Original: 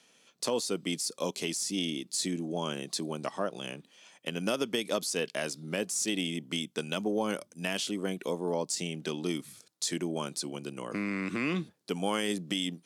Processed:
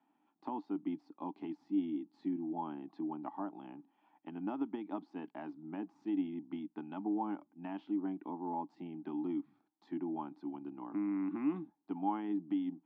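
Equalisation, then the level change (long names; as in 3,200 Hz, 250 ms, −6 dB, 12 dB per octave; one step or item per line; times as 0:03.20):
pair of resonant band-passes 500 Hz, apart 1.5 octaves
high-frequency loss of the air 360 metres
+4.5 dB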